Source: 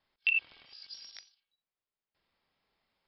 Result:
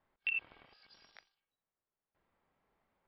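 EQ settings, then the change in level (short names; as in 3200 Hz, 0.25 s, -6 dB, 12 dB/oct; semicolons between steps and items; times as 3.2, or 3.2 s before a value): LPF 1500 Hz 12 dB/oct; +3.5 dB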